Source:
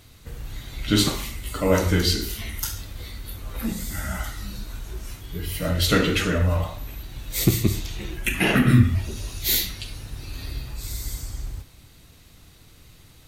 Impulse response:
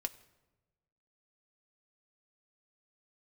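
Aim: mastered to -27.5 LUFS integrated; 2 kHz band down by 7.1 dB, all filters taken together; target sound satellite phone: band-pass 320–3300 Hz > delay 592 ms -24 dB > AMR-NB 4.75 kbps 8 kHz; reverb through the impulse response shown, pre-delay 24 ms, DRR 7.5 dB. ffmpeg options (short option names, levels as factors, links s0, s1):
-filter_complex "[0:a]equalizer=f=2000:t=o:g=-8.5,asplit=2[s0][s1];[1:a]atrim=start_sample=2205,adelay=24[s2];[s1][s2]afir=irnorm=-1:irlink=0,volume=0.447[s3];[s0][s3]amix=inputs=2:normalize=0,highpass=320,lowpass=3300,aecho=1:1:592:0.0631,volume=1.68" -ar 8000 -c:a libopencore_amrnb -b:a 4750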